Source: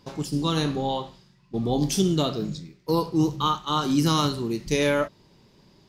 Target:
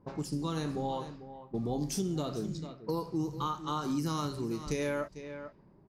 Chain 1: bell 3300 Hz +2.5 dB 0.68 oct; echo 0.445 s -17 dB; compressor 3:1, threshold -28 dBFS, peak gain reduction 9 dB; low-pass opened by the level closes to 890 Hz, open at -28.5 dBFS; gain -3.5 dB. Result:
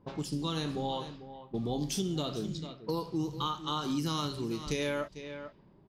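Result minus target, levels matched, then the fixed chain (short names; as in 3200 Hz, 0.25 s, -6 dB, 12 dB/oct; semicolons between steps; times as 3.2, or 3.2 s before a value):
4000 Hz band +6.5 dB
bell 3300 Hz -8.5 dB 0.68 oct; echo 0.445 s -17 dB; compressor 3:1, threshold -28 dBFS, peak gain reduction 9 dB; low-pass opened by the level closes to 890 Hz, open at -28.5 dBFS; gain -3.5 dB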